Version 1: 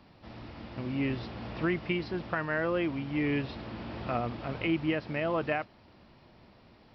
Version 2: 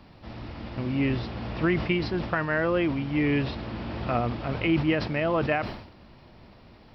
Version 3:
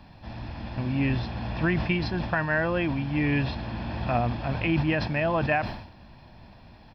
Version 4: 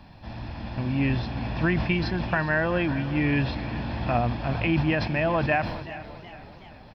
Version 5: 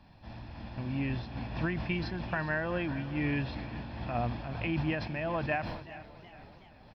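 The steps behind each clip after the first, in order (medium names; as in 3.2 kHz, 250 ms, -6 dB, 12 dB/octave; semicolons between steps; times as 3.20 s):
bass shelf 75 Hz +7.5 dB; decay stretcher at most 75 dB/s; trim +4.5 dB
comb 1.2 ms, depth 48%
feedback delay 409 ms, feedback 40%, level -17 dB; modulated delay 376 ms, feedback 57%, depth 132 cents, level -18 dB; trim +1 dB
random flutter of the level, depth 55%; trim -5.5 dB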